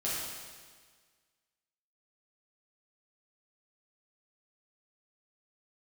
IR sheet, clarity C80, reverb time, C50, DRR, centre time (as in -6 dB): 0.5 dB, 1.6 s, -2.0 dB, -8.5 dB, 0.107 s